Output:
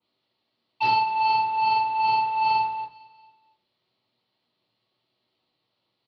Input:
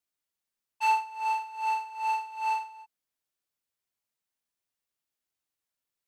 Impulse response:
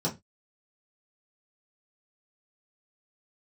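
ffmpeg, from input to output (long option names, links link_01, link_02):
-filter_complex "[0:a]highpass=frequency=310:poles=1,acrossover=split=890|2800[link_01][link_02][link_03];[link_01]asoftclip=type=hard:threshold=-39dB[link_04];[link_04][link_02][link_03]amix=inputs=3:normalize=0,acrusher=bits=4:mode=log:mix=0:aa=0.000001,aresample=11025,asoftclip=type=tanh:threshold=-37.5dB,aresample=44100,aecho=1:1:227|454|681:0.0841|0.0412|0.0202[link_05];[1:a]atrim=start_sample=2205,asetrate=33075,aresample=44100[link_06];[link_05][link_06]afir=irnorm=-1:irlink=0,adynamicequalizer=threshold=0.00398:dfrequency=2700:dqfactor=0.7:tfrequency=2700:tqfactor=0.7:attack=5:release=100:ratio=0.375:range=2.5:mode=cutabove:tftype=highshelf,volume=8.5dB"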